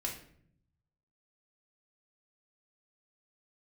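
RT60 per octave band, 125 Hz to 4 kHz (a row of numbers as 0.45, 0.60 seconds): 1.4, 1.0, 0.70, 0.55, 0.55, 0.45 seconds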